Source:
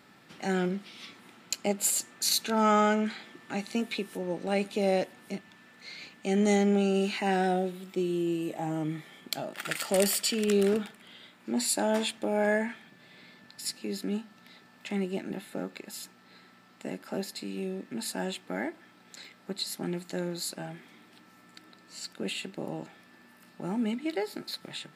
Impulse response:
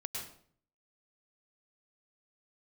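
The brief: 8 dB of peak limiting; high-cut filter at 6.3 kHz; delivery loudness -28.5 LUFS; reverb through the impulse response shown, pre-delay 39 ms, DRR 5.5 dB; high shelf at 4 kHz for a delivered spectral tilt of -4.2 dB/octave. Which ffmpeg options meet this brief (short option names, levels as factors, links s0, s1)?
-filter_complex "[0:a]lowpass=6300,highshelf=f=4000:g=3.5,alimiter=limit=0.112:level=0:latency=1,asplit=2[s0][s1];[1:a]atrim=start_sample=2205,adelay=39[s2];[s1][s2]afir=irnorm=-1:irlink=0,volume=0.501[s3];[s0][s3]amix=inputs=2:normalize=0,volume=1.33"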